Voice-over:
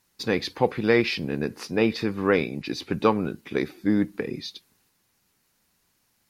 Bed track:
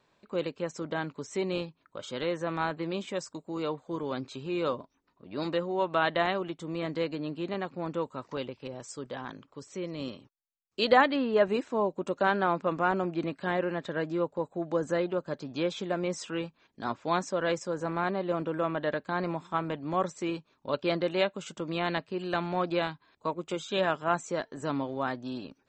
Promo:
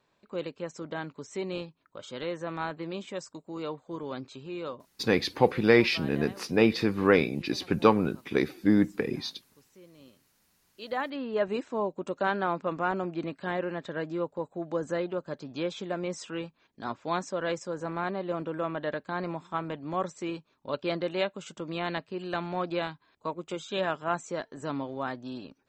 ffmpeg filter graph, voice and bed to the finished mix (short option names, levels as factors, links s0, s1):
-filter_complex "[0:a]adelay=4800,volume=1[s0];[1:a]volume=4.22,afade=t=out:st=4.24:d=0.92:silence=0.188365,afade=t=in:st=10.78:d=0.82:silence=0.16788[s1];[s0][s1]amix=inputs=2:normalize=0"